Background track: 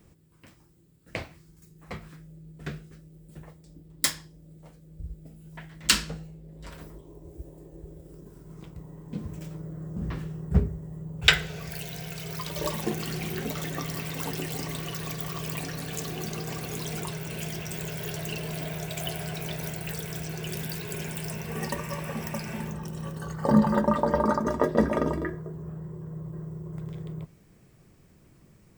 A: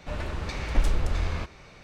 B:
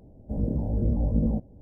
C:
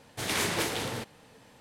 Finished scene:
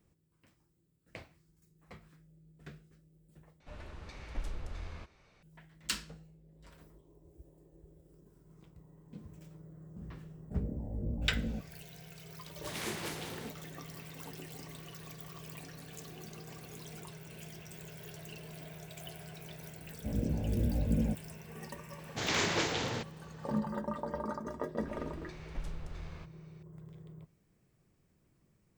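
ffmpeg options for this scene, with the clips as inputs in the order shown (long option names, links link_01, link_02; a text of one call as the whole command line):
ffmpeg -i bed.wav -i cue0.wav -i cue1.wav -i cue2.wav -filter_complex "[1:a]asplit=2[link_01][link_02];[2:a]asplit=2[link_03][link_04];[3:a]asplit=2[link_05][link_06];[0:a]volume=-14dB[link_07];[link_04]highpass=49[link_08];[link_06]aresample=16000,aresample=44100[link_09];[link_07]asplit=2[link_10][link_11];[link_10]atrim=end=3.604[link_12];[link_01]atrim=end=1.83,asetpts=PTS-STARTPTS,volume=-15.5dB[link_13];[link_11]atrim=start=5.426[link_14];[link_03]atrim=end=1.61,asetpts=PTS-STARTPTS,volume=-12dB,afade=type=in:duration=0.004:curve=hsin,afade=type=out:start_time=1.606:duration=0.004:curve=hsin,adelay=10210[link_15];[link_05]atrim=end=1.6,asetpts=PTS-STARTPTS,volume=-11dB,afade=type=in:duration=0.004:curve=hsin,afade=type=out:start_time=1.596:duration=0.004:curve=hsin,adelay=12460[link_16];[link_08]atrim=end=1.61,asetpts=PTS-STARTPTS,volume=-5.5dB,afade=type=in:duration=0.004:curve=hsin,afade=type=out:start_time=1.606:duration=0.004:curve=hsin,adelay=19750[link_17];[link_09]atrim=end=1.6,asetpts=PTS-STARTPTS,volume=-1.5dB,afade=type=in:duration=0.004:curve=hsin,afade=type=out:start_time=1.596:duration=0.004:curve=hsin,adelay=21990[link_18];[link_02]atrim=end=1.83,asetpts=PTS-STARTPTS,volume=-17.5dB,afade=type=in:duration=0.004:curve=hsin,afade=type=out:start_time=1.826:duration=0.004:curve=hsin,adelay=24800[link_19];[link_12][link_13]acrossfade=duration=0.004:curve1=hsin:curve2=hsin[link_20];[link_20][link_14]acrossfade=duration=0.004:curve1=hsin:curve2=hsin[link_21];[link_21][link_15][link_16][link_17][link_18][link_19]amix=inputs=6:normalize=0" out.wav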